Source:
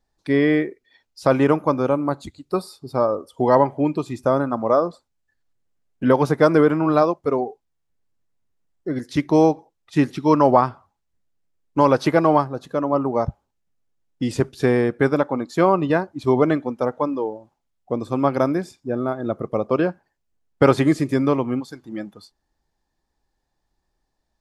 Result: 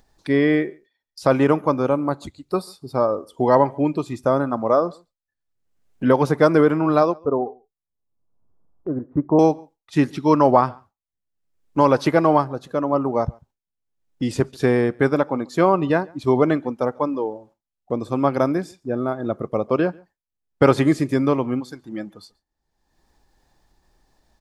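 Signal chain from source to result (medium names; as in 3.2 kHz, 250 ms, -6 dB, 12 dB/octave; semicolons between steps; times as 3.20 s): 7.15–9.39 s: steep low-pass 1.2 kHz 36 dB/octave; echo from a far wall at 24 m, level -27 dB; gate with hold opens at -41 dBFS; upward compressor, threshold -35 dBFS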